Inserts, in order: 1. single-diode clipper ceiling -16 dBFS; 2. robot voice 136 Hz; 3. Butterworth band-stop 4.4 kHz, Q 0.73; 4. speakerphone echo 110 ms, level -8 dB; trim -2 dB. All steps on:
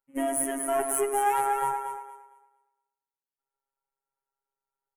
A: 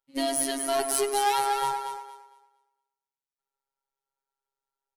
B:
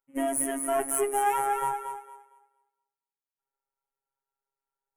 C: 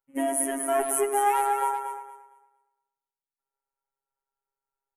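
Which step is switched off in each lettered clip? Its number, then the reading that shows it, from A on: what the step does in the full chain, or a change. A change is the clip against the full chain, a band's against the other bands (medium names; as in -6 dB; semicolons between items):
3, crest factor change +5.0 dB; 4, momentary loudness spread change -2 LU; 1, momentary loudness spread change -3 LU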